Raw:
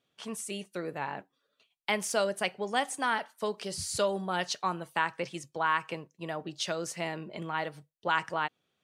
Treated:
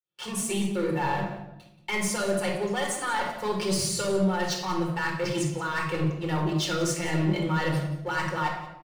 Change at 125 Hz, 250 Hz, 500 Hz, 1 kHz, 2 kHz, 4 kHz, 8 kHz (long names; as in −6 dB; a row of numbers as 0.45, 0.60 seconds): +15.0, +11.5, +4.5, +1.5, +2.5, +3.5, +6.5 decibels